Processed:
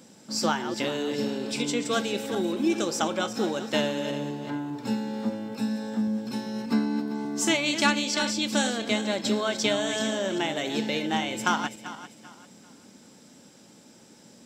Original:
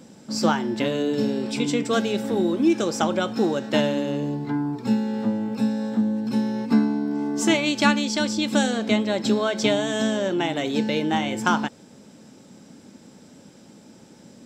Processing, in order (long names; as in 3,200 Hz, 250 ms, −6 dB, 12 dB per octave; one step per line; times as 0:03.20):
feedback delay that plays each chunk backwards 196 ms, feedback 55%, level −10.5 dB
spectral tilt +1.5 dB per octave
level −3.5 dB